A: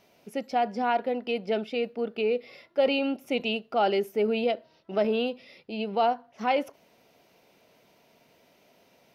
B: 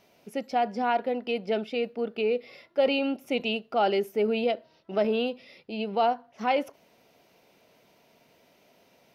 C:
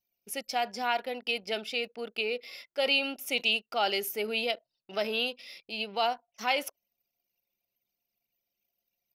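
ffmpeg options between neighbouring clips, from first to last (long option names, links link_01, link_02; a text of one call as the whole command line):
ffmpeg -i in.wav -af anull out.wav
ffmpeg -i in.wav -af "crystalizer=i=7.5:c=0,lowshelf=frequency=470:gain=-7.5,anlmdn=0.0631,volume=-5dB" out.wav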